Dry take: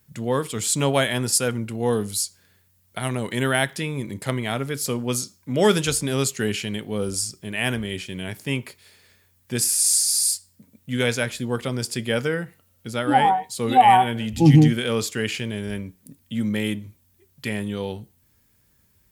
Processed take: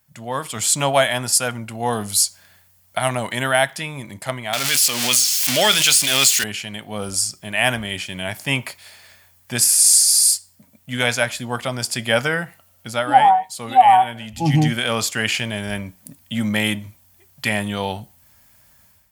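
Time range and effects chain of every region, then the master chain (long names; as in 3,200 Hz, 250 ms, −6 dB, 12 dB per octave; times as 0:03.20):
0:04.53–0:06.44: spike at every zero crossing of −17.5 dBFS + meter weighting curve D + background raised ahead of every attack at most 29 dB per second
whole clip: low shelf with overshoot 540 Hz −6 dB, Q 3; notch filter 3,800 Hz, Q 26; automatic gain control; level −1 dB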